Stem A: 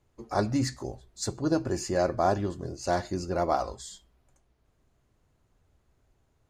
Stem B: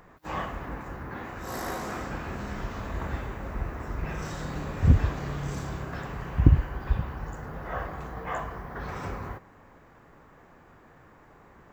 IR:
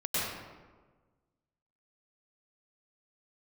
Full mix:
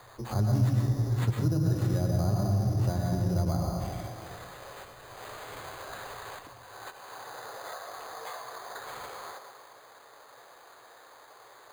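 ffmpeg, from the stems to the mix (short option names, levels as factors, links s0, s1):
-filter_complex "[0:a]volume=1,asplit=3[s0][s1][s2];[s1]volume=0.562[s3];[1:a]acompressor=threshold=0.0224:ratio=6,highpass=f=480:w=0.5412,highpass=f=480:w=1.3066,volume=1.41,asplit=2[s4][s5];[s5]volume=0.126[s6];[s2]apad=whole_len=517219[s7];[s4][s7]sidechaincompress=threshold=0.00794:ratio=8:attack=6:release=1170[s8];[2:a]atrim=start_sample=2205[s9];[s3][s6]amix=inputs=2:normalize=0[s10];[s10][s9]afir=irnorm=-1:irlink=0[s11];[s0][s8][s11]amix=inputs=3:normalize=0,acrusher=samples=8:mix=1:aa=0.000001,equalizer=f=120:w=2.7:g=14,acrossover=split=230|4000[s12][s13][s14];[s12]acompressor=threshold=0.0631:ratio=4[s15];[s13]acompressor=threshold=0.0112:ratio=4[s16];[s14]acompressor=threshold=0.00355:ratio=4[s17];[s15][s16][s17]amix=inputs=3:normalize=0"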